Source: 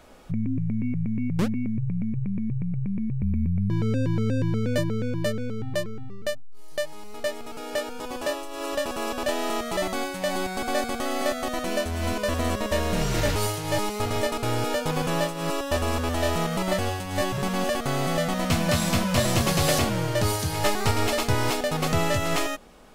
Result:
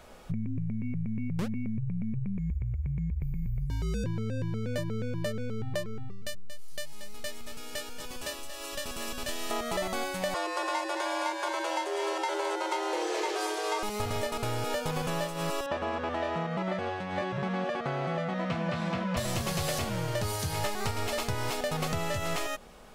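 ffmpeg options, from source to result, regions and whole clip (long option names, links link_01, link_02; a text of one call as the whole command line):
ffmpeg -i in.wav -filter_complex "[0:a]asettb=1/sr,asplit=3[link_01][link_02][link_03];[link_01]atrim=end=2.384[link_04];[link_02]atrim=start=2.38:end=4.04,asetpts=PTS-STARTPTS,afade=type=in:duration=0.004:curve=qsin,afade=type=out:start_time=1.656:duration=0.004:curve=qsin,bass=frequency=250:gain=-1,treble=frequency=4000:gain=12,afreqshift=-56[link_05];[link_03]atrim=start=4.036[link_06];[link_04][link_05]acrossfade=duration=0.004:curve1=hsin:curve2=qsin[link_07];[link_07][link_06]acrossfade=duration=0.004:curve1=qsin:curve2=hsin,asettb=1/sr,asplit=3[link_08][link_09][link_10];[link_08]atrim=end=6.114[link_11];[link_09]atrim=start=6.11:end=9.51,asetpts=PTS-STARTPTS,afade=type=in:duration=0.004:curve=qsin,afade=type=out:start_time=3.396:duration=0.004:curve=qsin,equalizer=frequency=690:width=0.47:gain=-13.5,aecho=1:1:231:0.282,atrim=end_sample=149940[link_12];[link_10]atrim=start=9.506[link_13];[link_11][link_12]acrossfade=duration=0.004:curve1=hsin:curve2=qsin[link_14];[link_14][link_13]acrossfade=duration=0.004:curve1=qsin:curve2=hsin,asettb=1/sr,asplit=3[link_15][link_16][link_17];[link_15]atrim=end=10.344[link_18];[link_16]atrim=start=10.34:end=13.83,asetpts=PTS-STARTPTS,afade=type=in:duration=0.004:curve=qsin,afade=type=out:start_time=3.486:duration=0.004:curve=qsin,lowpass=8100,aecho=1:1:218:0.266,atrim=end_sample=153909,afreqshift=320[link_19];[link_17]atrim=start=13.826[link_20];[link_18][link_19]acrossfade=duration=0.004:curve1=hsin:curve2=qsin[link_21];[link_21][link_20]acrossfade=duration=0.004:curve1=qsin:curve2=hsin,asettb=1/sr,asplit=3[link_22][link_23][link_24];[link_22]atrim=end=15.664[link_25];[link_23]atrim=start=15.66:end=19.17,asetpts=PTS-STARTPTS,afade=type=in:duration=0.004:curve=qsin,afade=type=out:start_time=3.506:duration=0.004:curve=qsin,highpass=140,lowpass=2500,aecho=1:1:5.9:0.32,atrim=end_sample=154791[link_26];[link_24]atrim=start=19.166[link_27];[link_25][link_26]acrossfade=duration=0.004:curve1=hsin:curve2=qsin[link_28];[link_28][link_27]acrossfade=duration=0.004:curve1=qsin:curve2=hsin,equalizer=frequency=290:width_type=o:width=0.34:gain=-8,acompressor=threshold=-28dB:ratio=6" out.wav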